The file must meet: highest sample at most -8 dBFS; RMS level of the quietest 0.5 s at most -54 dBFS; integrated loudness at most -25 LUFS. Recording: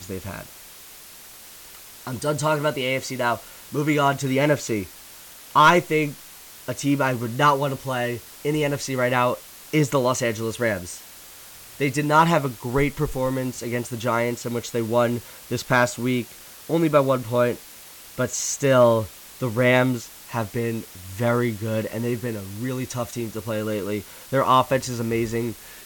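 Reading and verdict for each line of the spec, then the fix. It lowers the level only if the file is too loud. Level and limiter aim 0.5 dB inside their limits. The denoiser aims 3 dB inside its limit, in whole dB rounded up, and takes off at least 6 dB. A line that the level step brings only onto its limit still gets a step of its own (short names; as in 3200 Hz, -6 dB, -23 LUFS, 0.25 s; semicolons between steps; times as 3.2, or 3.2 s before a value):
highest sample -6.0 dBFS: fail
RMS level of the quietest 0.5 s -44 dBFS: fail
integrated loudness -23.0 LUFS: fail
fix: denoiser 11 dB, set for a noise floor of -44 dBFS; gain -2.5 dB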